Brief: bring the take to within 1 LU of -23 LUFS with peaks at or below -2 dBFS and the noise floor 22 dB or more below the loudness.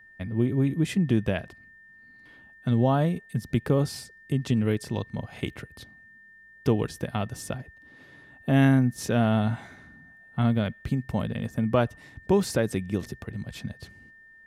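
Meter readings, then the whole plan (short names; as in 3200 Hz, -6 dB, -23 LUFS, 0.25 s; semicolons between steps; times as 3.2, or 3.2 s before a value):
steady tone 1800 Hz; tone level -50 dBFS; loudness -27.0 LUFS; peak -9.0 dBFS; loudness target -23.0 LUFS
-> notch 1800 Hz, Q 30; gain +4 dB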